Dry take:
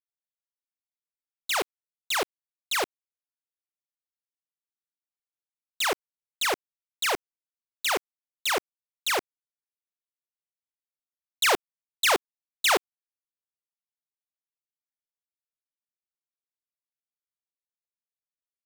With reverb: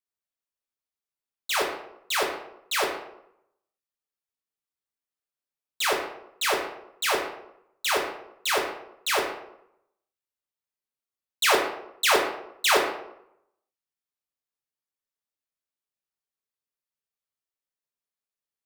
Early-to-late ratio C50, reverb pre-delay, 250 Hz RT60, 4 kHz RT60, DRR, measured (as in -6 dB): 5.0 dB, 4 ms, 0.80 s, 0.50 s, -1.5 dB